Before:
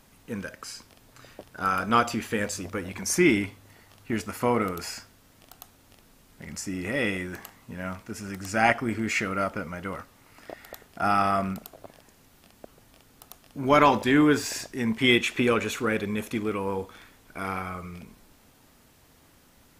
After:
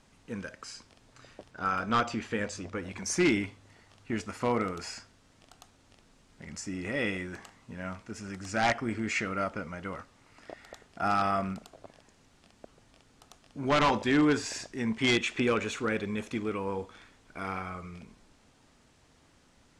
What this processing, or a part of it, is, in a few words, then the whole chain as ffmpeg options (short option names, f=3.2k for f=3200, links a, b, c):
synthesiser wavefolder: -filter_complex "[0:a]aeval=exprs='0.211*(abs(mod(val(0)/0.211+3,4)-2)-1)':c=same,lowpass=f=8.4k:w=0.5412,lowpass=f=8.4k:w=1.3066,asettb=1/sr,asplit=3[a][b][c];[a]atrim=end=1.514[d];[b]atrim=start=1.51:end=2.83,asetpts=PTS-STARTPTS,afade=t=in:d=0.004:c=qsin,afade=t=out:st=1.316:d=0.004:c=qsin,highshelf=f=9.3k:g=-11.5[e];[c]atrim=start=2.826[f];[d][e]acrossfade=d=0.004:c1=hsin:c2=qsin[g];[g][f]acrossfade=d=0.004:c1=qsin:c2=hsin,volume=-4dB"